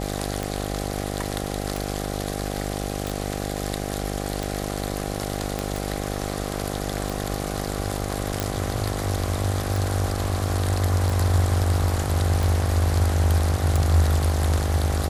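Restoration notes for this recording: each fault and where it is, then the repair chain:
buzz 50 Hz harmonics 16 -29 dBFS
tick 45 rpm
3.07 pop
5.59 pop -12 dBFS
8.4 pop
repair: de-click; de-hum 50 Hz, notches 16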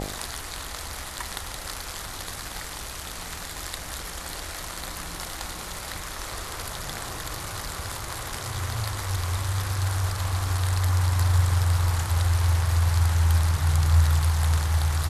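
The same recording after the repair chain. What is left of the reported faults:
5.59 pop

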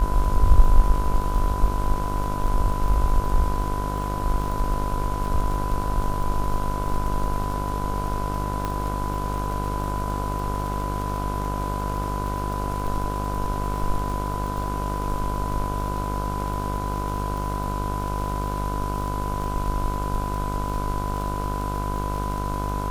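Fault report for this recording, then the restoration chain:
buzz 50 Hz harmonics 31 -28 dBFS
crackle 36/s -29 dBFS
tone 1000 Hz -30 dBFS
8.65 pop -14 dBFS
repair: de-click; notch 1000 Hz, Q 30; de-hum 50 Hz, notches 31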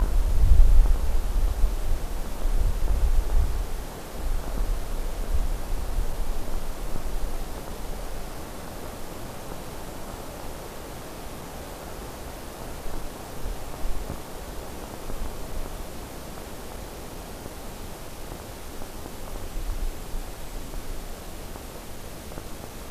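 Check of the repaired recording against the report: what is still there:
none

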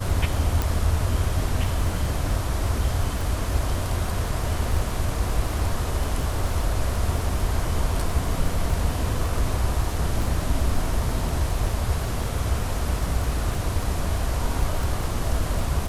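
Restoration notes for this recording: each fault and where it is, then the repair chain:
crackle 24/s -27 dBFS
0.62 pop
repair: de-click

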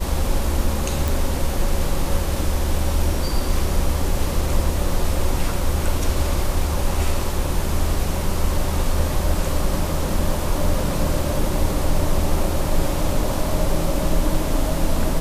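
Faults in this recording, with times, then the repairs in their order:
1.08 pop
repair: de-click

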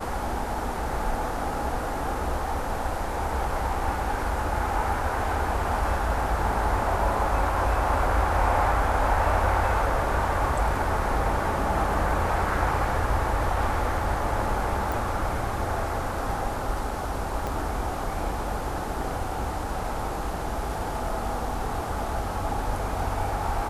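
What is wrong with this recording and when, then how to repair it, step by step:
14.92 pop
17.47 pop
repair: de-click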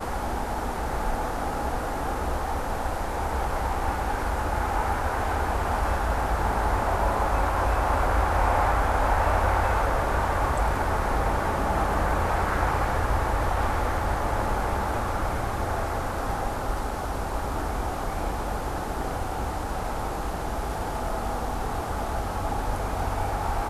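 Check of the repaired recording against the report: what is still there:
17.47 pop

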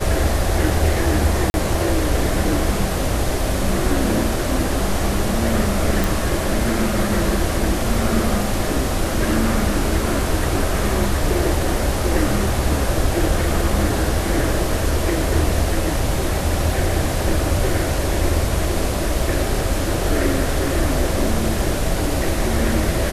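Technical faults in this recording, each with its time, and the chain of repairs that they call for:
1.5–1.54 gap 41 ms
6.04 pop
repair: de-click; interpolate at 1.5, 41 ms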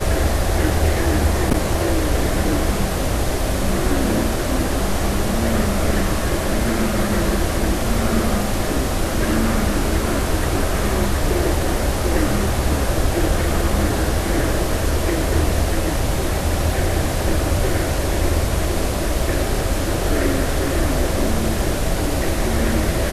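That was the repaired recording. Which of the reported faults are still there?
none

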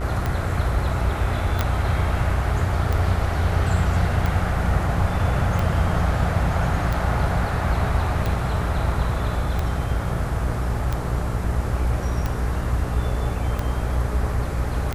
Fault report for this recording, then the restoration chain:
buzz 60 Hz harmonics 35 -26 dBFS
tick 45 rpm -12 dBFS
1.61 pop -7 dBFS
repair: de-click; de-hum 60 Hz, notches 35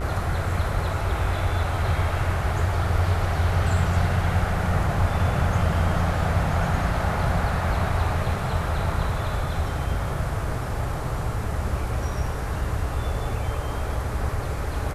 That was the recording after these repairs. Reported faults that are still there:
none

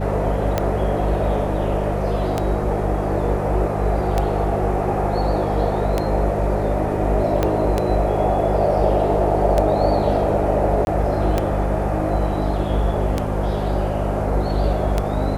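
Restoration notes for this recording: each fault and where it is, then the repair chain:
hum 50 Hz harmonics 4 -24 dBFS
tick 33 1/3 rpm -6 dBFS
7.43 pop -6 dBFS
10.85–10.87 gap 21 ms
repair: de-click; de-hum 50 Hz, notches 4; interpolate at 10.85, 21 ms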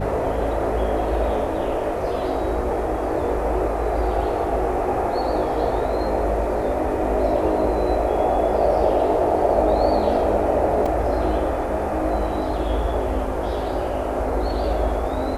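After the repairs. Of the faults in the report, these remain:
7.43 pop

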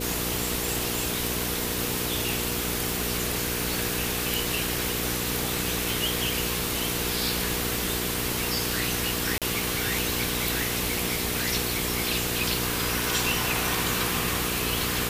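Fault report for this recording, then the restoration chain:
crackle 36/s -32 dBFS
hum 60 Hz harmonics 8 -33 dBFS
9.38–9.42 gap 37 ms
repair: de-click; de-hum 60 Hz, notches 8; interpolate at 9.38, 37 ms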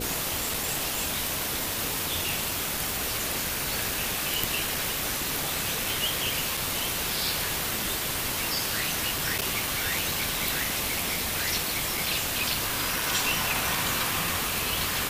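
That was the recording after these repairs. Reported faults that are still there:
none

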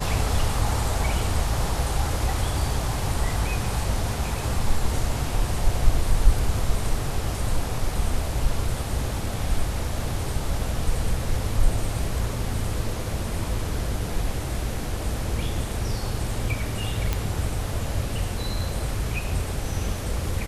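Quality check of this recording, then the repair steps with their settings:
17.13 pop -9 dBFS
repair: de-click

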